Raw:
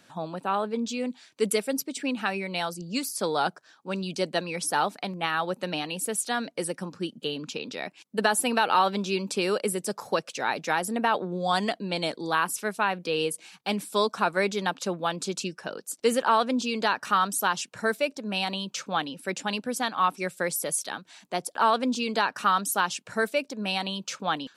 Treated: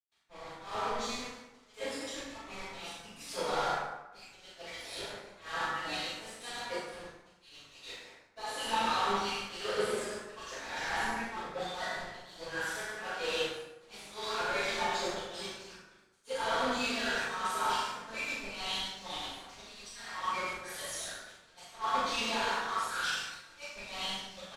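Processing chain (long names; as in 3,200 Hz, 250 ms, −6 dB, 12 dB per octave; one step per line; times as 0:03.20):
time-frequency cells dropped at random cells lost 36%
high-pass filter 1,300 Hz 6 dB per octave
upward compression, threshold −36 dBFS
single-tap delay 103 ms −6.5 dB
brickwall limiter −22 dBFS, peak gain reduction 8 dB
volume swells 206 ms
log-companded quantiser 2 bits
double-tracking delay 40 ms −3.5 dB
convolution reverb RT60 1.6 s, pre-delay 112 ms
multiband upward and downward expander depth 70%
level −4.5 dB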